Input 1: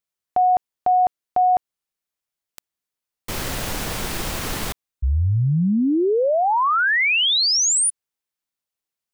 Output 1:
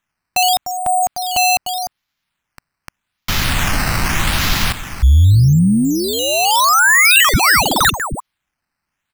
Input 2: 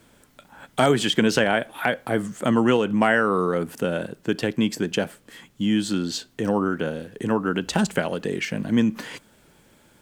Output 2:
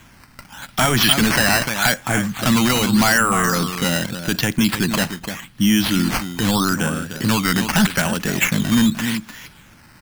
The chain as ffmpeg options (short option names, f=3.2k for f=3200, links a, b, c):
-filter_complex "[0:a]asplit=2[a][b];[b]aecho=0:1:300:0.266[c];[a][c]amix=inputs=2:normalize=0,apsyclip=17dB,acrusher=samples=9:mix=1:aa=0.000001:lfo=1:lforange=9:lforate=0.83,equalizer=f=460:w=1:g=-14.5,volume=-5dB"